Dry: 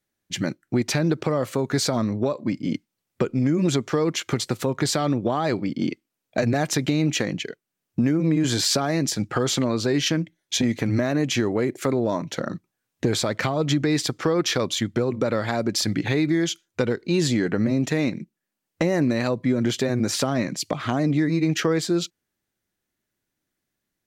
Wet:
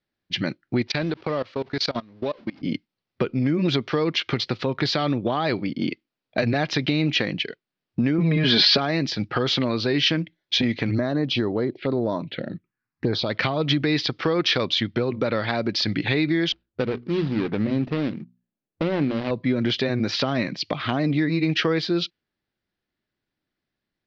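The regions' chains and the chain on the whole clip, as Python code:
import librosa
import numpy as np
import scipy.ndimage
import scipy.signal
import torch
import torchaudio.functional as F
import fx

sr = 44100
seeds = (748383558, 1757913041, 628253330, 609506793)

y = fx.chain(x, sr, fx.zero_step(step_db=-34.5),
    fx.low_shelf(hz=200.0, db=-7.0),
    fx.level_steps(step_db=24), at=(0.87, 2.62))
y = fx.chain(y, sr, fx.lowpass(hz=4800.0, slope=24),
    fx.comb(ms=4.8, depth=0.73),
    fx.env_flatten(amount_pct=70), at=(8.18, 8.78))
y = fx.chain(y, sr, fx.lowpass(hz=5100.0, slope=12),
    fx.env_phaser(low_hz=530.0, high_hz=2900.0, full_db=-17.5), at=(10.91, 13.3))
y = fx.chain(y, sr, fx.median_filter(points=41),
    fx.lowpass(hz=12000.0, slope=12),
    fx.hum_notches(base_hz=60, count=4), at=(16.52, 19.31))
y = scipy.signal.sosfilt(scipy.signal.butter(8, 5100.0, 'lowpass', fs=sr, output='sos'), y)
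y = fx.dynamic_eq(y, sr, hz=3000.0, q=0.9, threshold_db=-44.0, ratio=4.0, max_db=7)
y = F.gain(torch.from_numpy(y), -1.0).numpy()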